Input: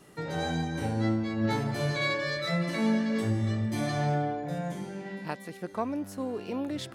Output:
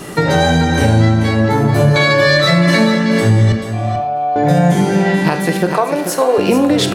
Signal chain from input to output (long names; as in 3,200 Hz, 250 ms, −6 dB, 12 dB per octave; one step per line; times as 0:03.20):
0:01.48–0:01.96: parametric band 3,800 Hz −11 dB 2.1 octaves
0:05.73–0:06.38: high-pass filter 420 Hz 24 dB per octave
downward compressor, threshold −35 dBFS, peak gain reduction 12 dB
0:03.52–0:04.36: formant filter a
single-tap delay 436 ms −9 dB
convolution reverb RT60 0.45 s, pre-delay 27 ms, DRR 10 dB
boost into a limiter +26.5 dB
level −1 dB